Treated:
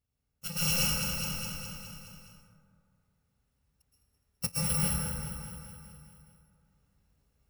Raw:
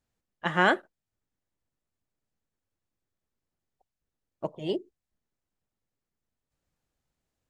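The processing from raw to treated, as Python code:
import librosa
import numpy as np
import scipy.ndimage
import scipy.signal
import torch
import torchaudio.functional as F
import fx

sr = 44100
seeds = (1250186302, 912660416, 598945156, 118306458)

y = fx.bit_reversed(x, sr, seeds[0], block=128)
y = scipy.signal.sosfilt(scipy.signal.butter(2, 54.0, 'highpass', fs=sr, output='sos'), y)
y = fx.high_shelf(y, sr, hz=4500.0, db=-5.5)
y = 10.0 ** (-19.5 / 20.0) * np.tanh(y / 10.0 ** (-19.5 / 20.0))
y = fx.low_shelf(y, sr, hz=120.0, db=11.5)
y = fx.echo_feedback(y, sr, ms=208, feedback_pct=60, wet_db=-10)
y = fx.rider(y, sr, range_db=4, speed_s=0.5)
y = fx.rev_plate(y, sr, seeds[1], rt60_s=2.2, hf_ratio=0.35, predelay_ms=105, drr_db=-6.5)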